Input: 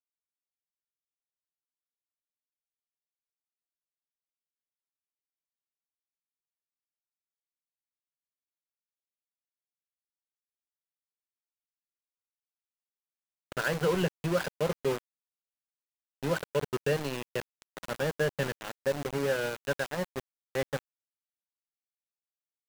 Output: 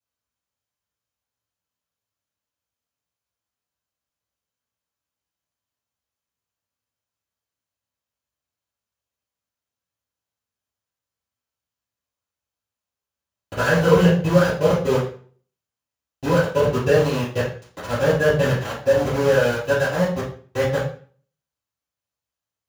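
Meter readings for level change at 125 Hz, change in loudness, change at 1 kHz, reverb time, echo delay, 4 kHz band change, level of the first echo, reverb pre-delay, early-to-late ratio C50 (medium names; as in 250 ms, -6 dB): +14.5 dB, +12.5 dB, +12.0 dB, 0.40 s, no echo, +8.5 dB, no echo, 3 ms, 4.0 dB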